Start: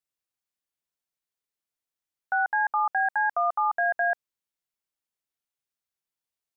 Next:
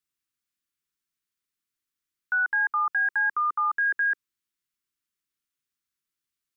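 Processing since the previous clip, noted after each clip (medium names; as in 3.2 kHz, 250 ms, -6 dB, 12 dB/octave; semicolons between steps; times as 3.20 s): Chebyshev band-stop 360–1200 Hz, order 2; trim +3.5 dB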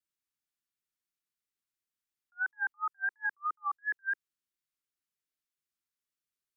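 vibrato 2.9 Hz 72 cents; attacks held to a fixed rise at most 570 dB/s; trim -6 dB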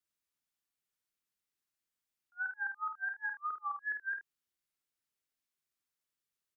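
compression 3:1, threshold -36 dBFS, peak gain reduction 6 dB; on a send: early reflections 50 ms -6.5 dB, 76 ms -13.5 dB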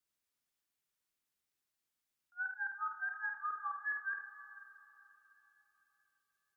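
compression 2:1, threshold -39 dBFS, peak gain reduction 4 dB; plate-style reverb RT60 3.9 s, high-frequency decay 0.75×, pre-delay 0 ms, DRR 10 dB; trim +1 dB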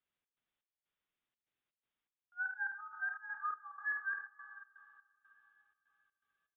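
trance gate "xx.xx..xxxx." 123 bpm -12 dB; resampled via 8 kHz; trim +1 dB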